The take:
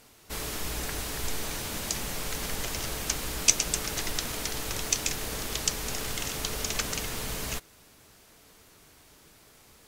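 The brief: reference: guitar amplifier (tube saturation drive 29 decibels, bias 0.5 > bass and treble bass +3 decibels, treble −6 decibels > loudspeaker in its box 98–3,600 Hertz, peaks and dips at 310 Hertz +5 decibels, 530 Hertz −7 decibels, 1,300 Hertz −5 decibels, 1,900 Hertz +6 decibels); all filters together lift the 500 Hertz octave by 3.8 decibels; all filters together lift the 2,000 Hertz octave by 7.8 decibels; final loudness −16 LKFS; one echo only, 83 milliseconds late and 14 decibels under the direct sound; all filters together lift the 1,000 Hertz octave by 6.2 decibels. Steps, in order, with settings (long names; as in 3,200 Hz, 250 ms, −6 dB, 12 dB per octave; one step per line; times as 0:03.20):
parametric band 500 Hz +5 dB
parametric band 1,000 Hz +7 dB
parametric band 2,000 Hz +5 dB
single-tap delay 83 ms −14 dB
tube saturation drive 29 dB, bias 0.5
bass and treble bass +3 dB, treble −6 dB
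loudspeaker in its box 98–3,600 Hz, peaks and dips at 310 Hz +5 dB, 530 Hz −7 dB, 1,300 Hz −5 dB, 1,900 Hz +6 dB
level +19.5 dB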